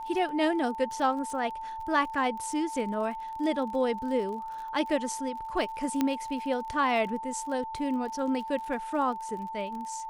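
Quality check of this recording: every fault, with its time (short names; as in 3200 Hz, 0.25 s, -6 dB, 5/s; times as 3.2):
crackle 37/s -38 dBFS
tone 890 Hz -35 dBFS
6.01 pop -13 dBFS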